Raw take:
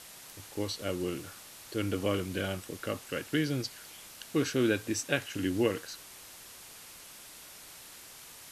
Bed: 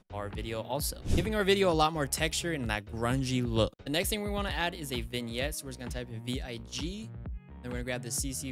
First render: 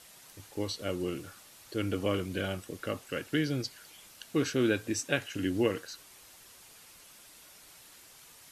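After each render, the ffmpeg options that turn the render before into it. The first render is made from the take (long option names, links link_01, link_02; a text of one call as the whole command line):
ffmpeg -i in.wav -af "afftdn=noise_reduction=6:noise_floor=-50" out.wav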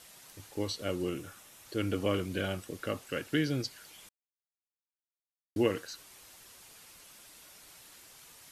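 ffmpeg -i in.wav -filter_complex "[0:a]asettb=1/sr,asplit=3[link_01][link_02][link_03];[link_01]atrim=end=1.094[link_04];[link_02]atrim=start=1.09:end=1.66,asetpts=PTS-STARTPTS,afade=type=in:duration=0.004:curve=qsin,afade=type=out:start_time=0.566:duration=0.004:curve=qsin,equalizer=frequency=4500:width=5.8:gain=-8[link_05];[link_03]atrim=start=1.656[link_06];[link_04][link_05]acrossfade=duration=0.004:curve1=hsin:curve2=qsin[link_07];[link_07][link_06]acrossfade=duration=0.004:curve1=qsin:curve2=hsin,asplit=3[link_08][link_09][link_10];[link_08]atrim=end=4.09,asetpts=PTS-STARTPTS,afade=type=out:start_time=4.086:duration=0.004:curve=hsin[link_11];[link_09]atrim=start=4.09:end=5.56,asetpts=PTS-STARTPTS,volume=0[link_12];[link_10]atrim=start=5.56,asetpts=PTS-STARTPTS,afade=type=in:duration=0.004:curve=hsin[link_13];[link_11][link_12][link_13]concat=n=3:v=0:a=1" out.wav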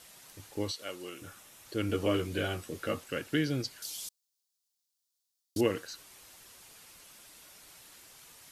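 ffmpeg -i in.wav -filter_complex "[0:a]asettb=1/sr,asplit=3[link_01][link_02][link_03];[link_01]atrim=end=0.714[link_04];[link_02]atrim=start=0.71:end=1.22,asetpts=PTS-STARTPTS,afade=type=in:duration=0.004:curve=qsin,afade=type=out:start_time=0.506:duration=0.004:curve=qsin,highpass=frequency=1100:poles=1[link_05];[link_03]atrim=start=1.216[link_06];[link_04][link_05]acrossfade=duration=0.004:curve1=hsin:curve2=qsin[link_07];[link_07][link_06]acrossfade=duration=0.004:curve1=qsin:curve2=hsin,asettb=1/sr,asplit=3[link_08][link_09][link_10];[link_08]atrim=end=1.884[link_11];[link_09]atrim=start=1.88:end=3.04,asetpts=PTS-STARTPTS,afade=type=in:duration=0.004:curve=qsin,afade=type=out:start_time=1.156:duration=0.004:curve=qsin,asplit=2[link_12][link_13];[link_13]adelay=13,volume=-4dB[link_14];[link_12][link_14]amix=inputs=2:normalize=0,atrim=end_sample=51156[link_15];[link_10]atrim=start=3.036[link_16];[link_11][link_15]acrossfade=duration=0.004:curve1=hsin:curve2=qsin[link_17];[link_17][link_16]acrossfade=duration=0.004:curve1=qsin:curve2=hsin,asettb=1/sr,asplit=3[link_18][link_19][link_20];[link_18]atrim=end=3.824[link_21];[link_19]atrim=start=3.82:end=5.61,asetpts=PTS-STARTPTS,afade=type=in:duration=0.004:curve=qsin,afade=type=out:start_time=1.786:duration=0.004:curve=qsin,highshelf=frequency=3100:width_type=q:width=1.5:gain=13[link_22];[link_20]atrim=start=5.606[link_23];[link_21][link_22]acrossfade=duration=0.004:curve1=hsin:curve2=qsin[link_24];[link_24][link_23]acrossfade=duration=0.004:curve1=qsin:curve2=hsin" out.wav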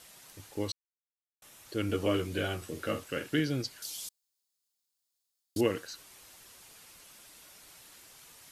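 ffmpeg -i in.wav -filter_complex "[0:a]asettb=1/sr,asplit=3[link_01][link_02][link_03];[link_01]atrim=end=2.574[link_04];[link_02]atrim=start=2.57:end=3.4,asetpts=PTS-STARTPTS,afade=type=in:duration=0.004:curve=qsin,afade=type=out:start_time=0.826:duration=0.004:curve=qsin,asplit=2[link_05][link_06];[link_06]adelay=47,volume=-9dB[link_07];[link_05][link_07]amix=inputs=2:normalize=0,atrim=end_sample=36603[link_08];[link_03]atrim=start=3.396[link_09];[link_04][link_08]acrossfade=duration=0.004:curve1=hsin:curve2=qsin[link_10];[link_10][link_09]acrossfade=duration=0.004:curve1=qsin:curve2=hsin,asettb=1/sr,asplit=3[link_11][link_12][link_13];[link_11]atrim=end=4.074[link_14];[link_12]atrim=start=4.07:end=5.61,asetpts=PTS-STARTPTS,afade=type=in:duration=0.004:curve=qsin,afade=type=out:start_time=1.536:duration=0.004:curve=qsin,bandreject=frequency=5800:width=14[link_15];[link_13]atrim=start=5.606[link_16];[link_14][link_15]acrossfade=duration=0.004:curve1=hsin:curve2=qsin[link_17];[link_17][link_16]acrossfade=duration=0.004:curve1=qsin:curve2=hsin,asplit=3[link_18][link_19][link_20];[link_18]atrim=end=0.72,asetpts=PTS-STARTPTS,afade=type=out:start_time=0.716:duration=0.004:curve=hsin[link_21];[link_19]atrim=start=0.72:end=1.42,asetpts=PTS-STARTPTS,volume=0[link_22];[link_20]atrim=start=1.42,asetpts=PTS-STARTPTS,afade=type=in:duration=0.004:curve=hsin[link_23];[link_21][link_22][link_23]concat=n=3:v=0:a=1" out.wav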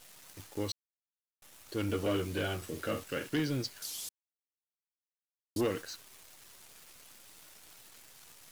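ffmpeg -i in.wav -af "asoftclip=type=tanh:threshold=-24dB,acrusher=bits=9:dc=4:mix=0:aa=0.000001" out.wav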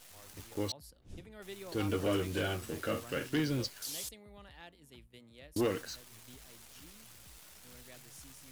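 ffmpeg -i in.wav -i bed.wav -filter_complex "[1:a]volume=-21.5dB[link_01];[0:a][link_01]amix=inputs=2:normalize=0" out.wav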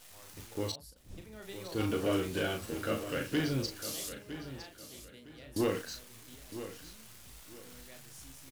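ffmpeg -i in.wav -filter_complex "[0:a]asplit=2[link_01][link_02];[link_02]adelay=37,volume=-6dB[link_03];[link_01][link_03]amix=inputs=2:normalize=0,aecho=1:1:959|1918|2877:0.251|0.0703|0.0197" out.wav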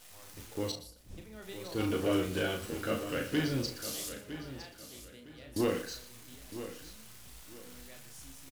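ffmpeg -i in.wav -filter_complex "[0:a]asplit=2[link_01][link_02];[link_02]adelay=33,volume=-11.5dB[link_03];[link_01][link_03]amix=inputs=2:normalize=0,aecho=1:1:119|238:0.178|0.032" out.wav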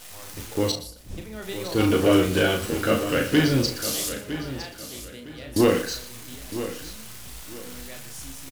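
ffmpeg -i in.wav -af "volume=11.5dB" out.wav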